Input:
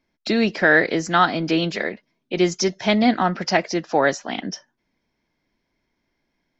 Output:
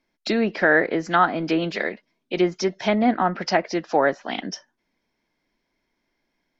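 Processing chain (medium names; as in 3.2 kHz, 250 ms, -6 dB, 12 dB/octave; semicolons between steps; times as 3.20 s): low-pass that closes with the level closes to 1.7 kHz, closed at -15 dBFS; peaking EQ 82 Hz -8.5 dB 2.1 oct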